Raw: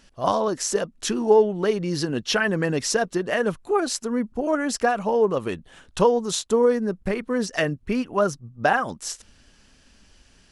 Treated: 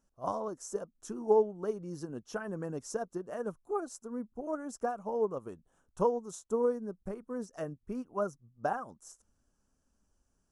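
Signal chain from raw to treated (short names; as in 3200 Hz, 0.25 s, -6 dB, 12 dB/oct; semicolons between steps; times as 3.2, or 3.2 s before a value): band shelf 2900 Hz -15.5 dB; upward expander 1.5:1, over -33 dBFS; gain -8.5 dB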